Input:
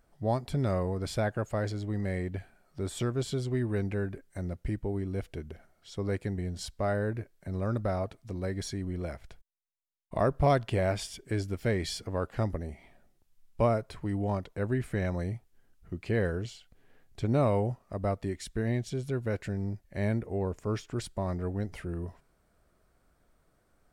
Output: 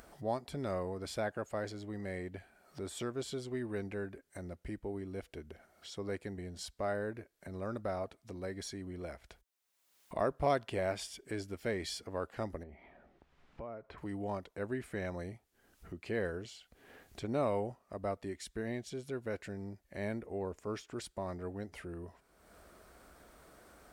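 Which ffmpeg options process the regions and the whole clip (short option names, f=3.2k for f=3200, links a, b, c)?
-filter_complex "[0:a]asettb=1/sr,asplit=3[a][b][c];[a]atrim=end=12.634[d];[b]atrim=start=12.63:end=13.98,asetpts=PTS-STARTPTS,afade=t=in:d=0.004:c=qsin,afade=t=out:st=1.346:d=0.004:c=qsin,lowpass=2.1k,acompressor=threshold=-37dB:ratio=4:attack=3.2:release=140:knee=1:detection=peak[e];[c]atrim=start=13.976[f];[d][e]acrossfade=d=0.004:c1=hsin:c2=qsin[g];[g][f]acrossfade=d=0.004:c1=qsin:c2=hsin,highpass=58,equalizer=f=120:t=o:w=1.3:g=-10.5,acompressor=mode=upward:threshold=-38dB:ratio=2.5,volume=-4.5dB"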